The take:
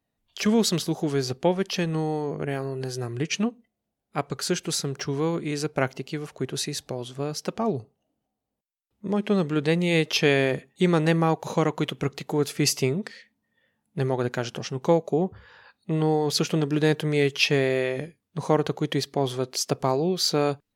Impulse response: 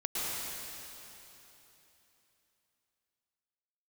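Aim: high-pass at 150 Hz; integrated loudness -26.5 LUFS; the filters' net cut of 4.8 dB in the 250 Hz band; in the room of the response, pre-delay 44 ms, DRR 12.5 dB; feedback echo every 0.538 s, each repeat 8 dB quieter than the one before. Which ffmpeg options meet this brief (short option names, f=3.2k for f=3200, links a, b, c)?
-filter_complex "[0:a]highpass=150,equalizer=f=250:t=o:g=-6,aecho=1:1:538|1076|1614|2152|2690:0.398|0.159|0.0637|0.0255|0.0102,asplit=2[a][b];[1:a]atrim=start_sample=2205,adelay=44[c];[b][c]afir=irnorm=-1:irlink=0,volume=-19.5dB[d];[a][d]amix=inputs=2:normalize=0,volume=0.5dB"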